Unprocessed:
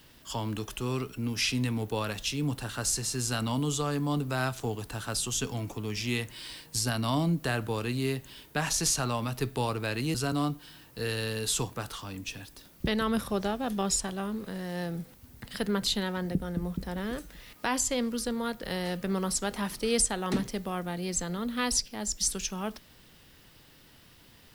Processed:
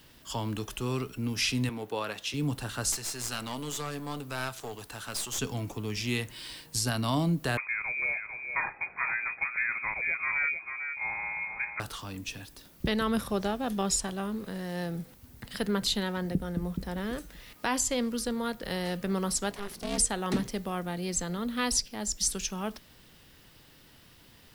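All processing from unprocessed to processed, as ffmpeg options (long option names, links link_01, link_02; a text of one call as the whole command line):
ffmpeg -i in.wav -filter_complex "[0:a]asettb=1/sr,asplit=3[link_01][link_02][link_03];[link_01]atrim=end=1.694[link_04];[link_02]atrim=start=1.69:end=2.34,asetpts=PTS-STARTPTS,afade=type=in:duration=0.004:curve=qsin,afade=type=out:start_time=0.646:duration=0.004:curve=qsin,highpass=100,bass=frequency=250:gain=-11,treble=frequency=4000:gain=-6[link_05];[link_03]atrim=start=2.336[link_06];[link_04][link_05]acrossfade=duration=0.004:curve1=hsin:curve2=qsin[link_07];[link_07][link_06]acrossfade=duration=0.004:curve1=qsin:curve2=hsin,asettb=1/sr,asplit=3[link_08][link_09][link_10];[link_08]atrim=end=2.924[link_11];[link_09]atrim=start=2.92:end=5.39,asetpts=PTS-STARTPTS,afade=type=in:duration=0.004:curve=qsin,afade=type=out:start_time=2.466:duration=0.004:curve=qsin,lowshelf=frequency=350:gain=-10.5,aeval=exprs='clip(val(0),-1,0.0133)':channel_layout=same[link_12];[link_10]atrim=start=5.386[link_13];[link_11][link_12]acrossfade=duration=0.004:curve1=hsin:curve2=qsin[link_14];[link_14][link_13]acrossfade=duration=0.004:curve1=qsin:curve2=hsin,asettb=1/sr,asplit=3[link_15][link_16][link_17];[link_15]atrim=end=7.574[link_18];[link_16]atrim=start=7.57:end=11.8,asetpts=PTS-STARTPTS,afade=type=in:duration=0.004:curve=qsin,afade=type=out:start_time=4.226:duration=0.004:curve=qsin,highpass=160,lowpass=frequency=2200:width_type=q:width=0.5098,lowpass=frequency=2200:width_type=q:width=0.6013,lowpass=frequency=2200:width_type=q:width=0.9,lowpass=frequency=2200:width_type=q:width=2.563,afreqshift=-2600,aecho=1:1:447:0.447,atrim=end_sample=186543[link_19];[link_17]atrim=start=11.796[link_20];[link_18][link_19]acrossfade=duration=0.004:curve1=hsin:curve2=qsin[link_21];[link_21][link_20]acrossfade=duration=0.004:curve1=qsin:curve2=hsin,asettb=1/sr,asplit=3[link_22][link_23][link_24];[link_22]atrim=end=19.514[link_25];[link_23]atrim=start=19.51:end=19.98,asetpts=PTS-STARTPTS,afade=type=in:duration=0.004:curve=qsin,afade=type=out:start_time=0.466:duration=0.004:curve=qsin,aeval=exprs='clip(val(0),-1,0.0106)':channel_layout=same,aeval=exprs='val(0)*sin(2*PI*200*n/s)':channel_layout=same[link_26];[link_24]atrim=start=19.976[link_27];[link_25][link_26]acrossfade=duration=0.004:curve1=hsin:curve2=qsin[link_28];[link_28][link_27]acrossfade=duration=0.004:curve1=qsin:curve2=hsin" out.wav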